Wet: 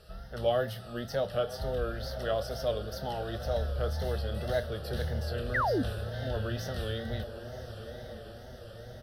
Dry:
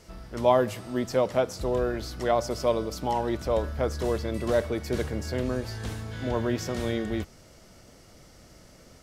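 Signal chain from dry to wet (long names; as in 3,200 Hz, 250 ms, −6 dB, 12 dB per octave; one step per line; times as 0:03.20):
phaser with its sweep stopped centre 1,500 Hz, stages 8
on a send: feedback delay with all-pass diffusion 1,041 ms, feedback 58%, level −12 dB
on the sum: dynamic equaliser 660 Hz, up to −6 dB, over −38 dBFS, Q 0.73
double-tracking delay 28 ms −11.5 dB
tape wow and flutter 93 cents
sound drawn into the spectrogram fall, 0:05.54–0:05.83, 220–2,100 Hz −28 dBFS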